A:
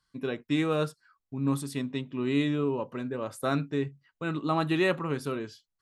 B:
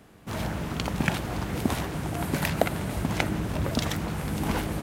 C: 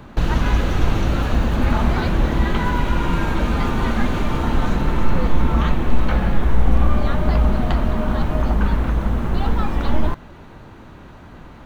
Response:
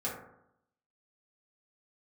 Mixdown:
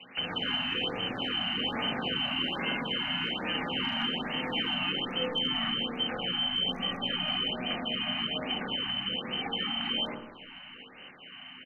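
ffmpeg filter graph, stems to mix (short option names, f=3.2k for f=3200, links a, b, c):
-filter_complex "[0:a]volume=-1dB[a];[1:a]alimiter=limit=-17dB:level=0:latency=1:release=59,adelay=100,volume=-11.5dB[b];[2:a]aemphasis=mode=production:type=cd,volume=-4dB,asplit=3[c][d][e];[d]volume=-13dB[f];[e]volume=-22dB[g];[a][c]amix=inputs=2:normalize=0,lowpass=f=2.6k:t=q:w=0.5098,lowpass=f=2.6k:t=q:w=0.6013,lowpass=f=2.6k:t=q:w=0.9,lowpass=f=2.6k:t=q:w=2.563,afreqshift=-3100,acompressor=threshold=-32dB:ratio=2,volume=0dB[h];[3:a]atrim=start_sample=2205[i];[f][i]afir=irnorm=-1:irlink=0[j];[g]aecho=0:1:241|482|723|964|1205|1446|1687|1928:1|0.52|0.27|0.141|0.0731|0.038|0.0198|0.0103[k];[b][h][j][k]amix=inputs=4:normalize=0,volume=17dB,asoftclip=hard,volume=-17dB,acrossover=split=180 3200:gain=0.0794 1 0.0708[l][m][n];[l][m][n]amix=inputs=3:normalize=0,afftfilt=real='re*(1-between(b*sr/1024,390*pow(4600/390,0.5+0.5*sin(2*PI*1.2*pts/sr))/1.41,390*pow(4600/390,0.5+0.5*sin(2*PI*1.2*pts/sr))*1.41))':imag='im*(1-between(b*sr/1024,390*pow(4600/390,0.5+0.5*sin(2*PI*1.2*pts/sr))/1.41,390*pow(4600/390,0.5+0.5*sin(2*PI*1.2*pts/sr))*1.41))':win_size=1024:overlap=0.75"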